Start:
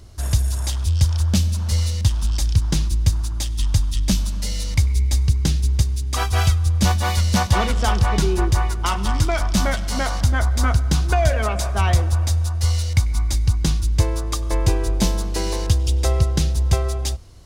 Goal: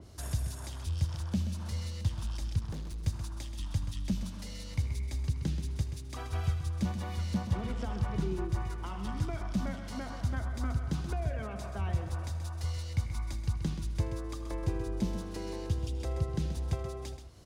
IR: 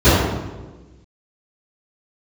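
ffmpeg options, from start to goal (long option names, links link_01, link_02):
-filter_complex "[0:a]highpass=frequency=180:poles=1,acrossover=split=610[link_01][link_02];[link_01]acompressor=mode=upward:threshold=-39dB:ratio=2.5[link_03];[link_02]alimiter=limit=-20dB:level=0:latency=1:release=32[link_04];[link_03][link_04]amix=inputs=2:normalize=0,acrossover=split=280[link_05][link_06];[link_06]acompressor=threshold=-35dB:ratio=6[link_07];[link_05][link_07]amix=inputs=2:normalize=0,asettb=1/sr,asplit=3[link_08][link_09][link_10];[link_08]atrim=end=2.594[link_11];[link_09]atrim=start=2.59:end=3.06,asetpts=PTS-STARTPTS,afade=type=in:duration=0.004:curve=qsin,afade=type=out:start_time=0.466:duration=0.004:curve=qsin,asoftclip=type=hard:threshold=-31dB[link_12];[link_10]atrim=start=3.056[link_13];[link_11][link_12]acrossfade=duration=0.004:curve1=hsin:curve2=qsin[link_14];[link_14][link_13]acrossfade=duration=0.004:curve1=qsin:curve2=hsin,asplit=2[link_15][link_16];[link_16]aecho=0:1:79|130:0.15|0.335[link_17];[link_15][link_17]amix=inputs=2:normalize=0,adynamicequalizer=threshold=0.00224:dfrequency=3600:dqfactor=0.7:tfrequency=3600:tqfactor=0.7:attack=5:release=100:ratio=0.375:range=3.5:mode=cutabove:tftype=highshelf,volume=-6.5dB"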